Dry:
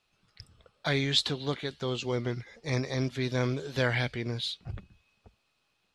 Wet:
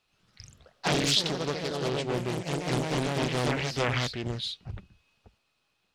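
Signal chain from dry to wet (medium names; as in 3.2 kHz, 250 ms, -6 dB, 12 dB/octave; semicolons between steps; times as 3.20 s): ever faster or slower copies 82 ms, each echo +2 st, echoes 3; loudspeaker Doppler distortion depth 0.96 ms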